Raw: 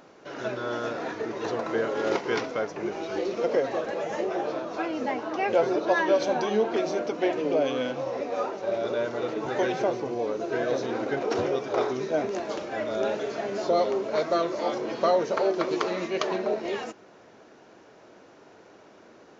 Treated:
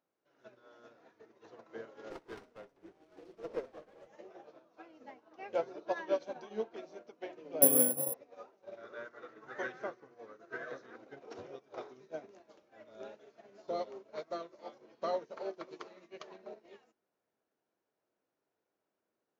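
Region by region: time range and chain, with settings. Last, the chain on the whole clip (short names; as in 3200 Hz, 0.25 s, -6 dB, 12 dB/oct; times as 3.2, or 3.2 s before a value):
2.1–4.07 frequency shift -21 Hz + flutter echo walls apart 10.5 m, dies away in 0.31 s + running maximum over 9 samples
7.62–8.14 HPF 55 Hz + tilt shelf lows +8 dB, about 820 Hz + careless resampling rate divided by 4×, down none, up zero stuff
8.77–10.96 HPF 57 Hz + band shelf 1500 Hz +10.5 dB 1 oct
whole clip: notches 60/120/180/240/300/360/420 Hz; upward expander 2.5:1, over -35 dBFS; gain -3.5 dB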